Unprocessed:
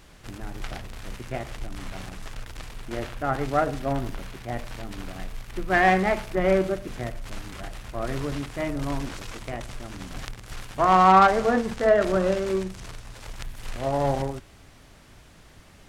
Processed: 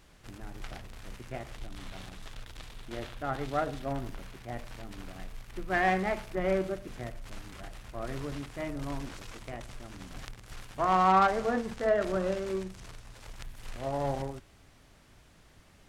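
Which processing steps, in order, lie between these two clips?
0:01.56–0:03.84: parametric band 3,600 Hz +5.5 dB 0.55 octaves
level −7.5 dB

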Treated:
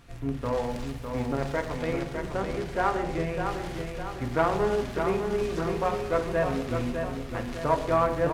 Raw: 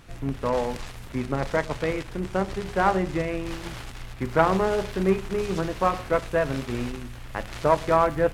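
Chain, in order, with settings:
0:00.40–0:01.76: surface crackle 480 per second −43 dBFS
repeating echo 605 ms, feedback 49%, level −6 dB
on a send at −5.5 dB: convolution reverb RT60 0.85 s, pre-delay 3 ms
on the sum: level −5 dB

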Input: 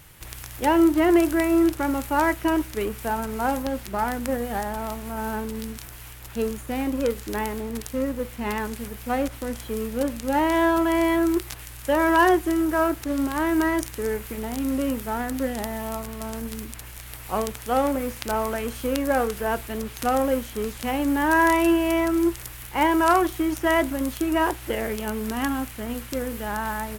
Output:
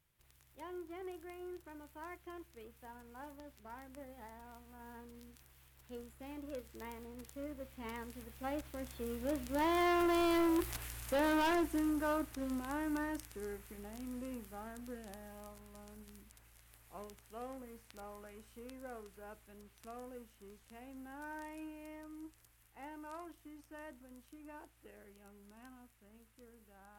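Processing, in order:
source passing by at 0:10.52, 25 m/s, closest 16 metres
gain into a clipping stage and back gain 25 dB
level −4.5 dB

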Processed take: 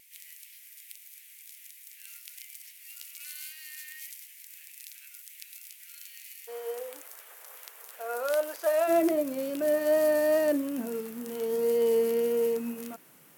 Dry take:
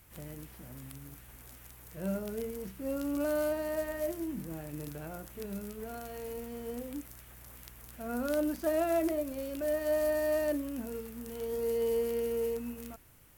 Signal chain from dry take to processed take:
elliptic high-pass filter 2,100 Hz, stop band 70 dB, from 0:06.47 450 Hz, from 0:08.87 160 Hz
tape wow and flutter 24 cents
level +6 dB

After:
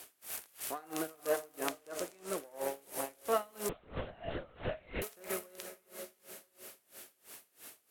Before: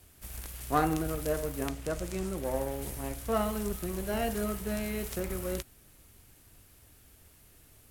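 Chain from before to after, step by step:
high-pass filter 440 Hz 12 dB per octave
downward compressor 1.5 to 1, threshold −55 dBFS, peak gain reduction 11.5 dB
feedback delay with all-pass diffusion 504 ms, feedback 44%, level −12 dB
0:03.69–0:05.02: linear-prediction vocoder at 8 kHz whisper
tremolo with a sine in dB 3 Hz, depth 27 dB
level +11.5 dB

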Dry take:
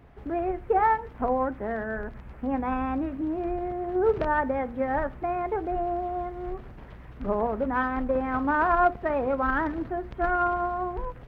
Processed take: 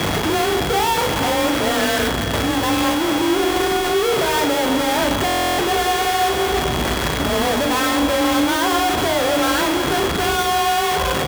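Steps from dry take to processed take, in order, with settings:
sign of each sample alone
low-shelf EQ 76 Hz −8 dB
mains-hum notches 60/120 Hz
steady tone 3,300 Hz −35 dBFS
frequency shifter +29 Hz
double-tracking delay 38 ms −7 dB
echo whose low-pass opens from repeat to repeat 117 ms, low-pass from 200 Hz, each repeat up 2 octaves, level −6 dB
buffer that repeats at 0:05.26, samples 1,024, times 13
level +8 dB

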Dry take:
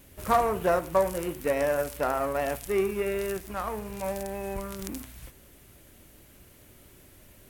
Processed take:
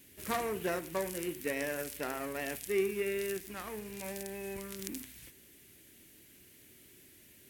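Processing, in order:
high-pass filter 300 Hz 6 dB per octave
flat-topped bell 840 Hz −11 dB
level −1.5 dB

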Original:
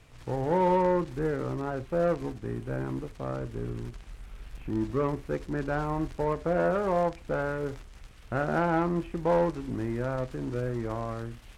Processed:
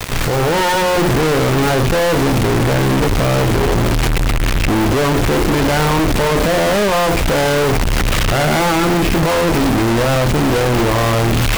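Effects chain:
stylus tracing distortion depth 0.3 ms
high-shelf EQ 5,700 Hz −5.5 dB
mains-hum notches 60/120/180/240/300/360 Hz
downward compressor, threshold −40 dBFS, peak gain reduction 18 dB
brickwall limiter −38 dBFS, peak gain reduction 13 dB
automatic gain control gain up to 16 dB
fuzz pedal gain 56 dB, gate −54 dBFS
bit reduction 4 bits

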